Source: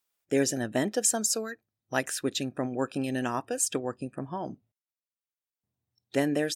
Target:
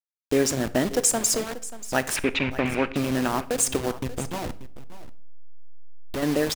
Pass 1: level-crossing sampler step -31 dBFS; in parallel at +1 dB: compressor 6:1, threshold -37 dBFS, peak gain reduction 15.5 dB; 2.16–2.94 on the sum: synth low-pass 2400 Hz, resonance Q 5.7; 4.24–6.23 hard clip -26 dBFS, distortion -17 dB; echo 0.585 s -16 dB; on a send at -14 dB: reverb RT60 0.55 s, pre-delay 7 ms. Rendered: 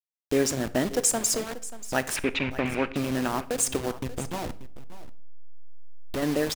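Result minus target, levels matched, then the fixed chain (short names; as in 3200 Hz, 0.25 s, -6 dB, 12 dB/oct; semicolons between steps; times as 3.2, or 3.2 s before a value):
compressor: peak gain reduction +8 dB
level-crossing sampler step -31 dBFS; in parallel at +1 dB: compressor 6:1, threshold -27.5 dBFS, peak gain reduction 7.5 dB; 2.16–2.94 on the sum: synth low-pass 2400 Hz, resonance Q 5.7; 4.24–6.23 hard clip -26 dBFS, distortion -16 dB; echo 0.585 s -16 dB; on a send at -14 dB: reverb RT60 0.55 s, pre-delay 7 ms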